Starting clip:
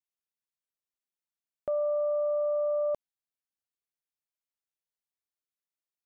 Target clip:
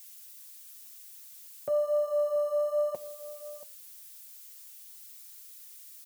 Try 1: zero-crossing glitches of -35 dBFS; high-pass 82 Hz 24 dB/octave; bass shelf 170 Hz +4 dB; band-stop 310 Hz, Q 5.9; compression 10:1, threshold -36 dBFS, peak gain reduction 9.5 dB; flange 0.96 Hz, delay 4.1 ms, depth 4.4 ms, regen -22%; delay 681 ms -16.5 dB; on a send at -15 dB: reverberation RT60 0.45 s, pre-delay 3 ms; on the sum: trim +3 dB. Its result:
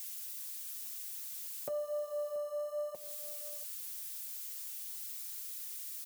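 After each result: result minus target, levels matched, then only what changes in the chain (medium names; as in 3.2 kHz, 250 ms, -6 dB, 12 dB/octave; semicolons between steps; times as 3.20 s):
compression: peak gain reduction +9.5 dB; zero-crossing glitches: distortion +6 dB
remove: compression 10:1, threshold -36 dBFS, peak gain reduction 9.5 dB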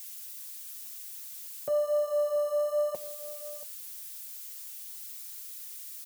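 zero-crossing glitches: distortion +6 dB
change: zero-crossing glitches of -41.5 dBFS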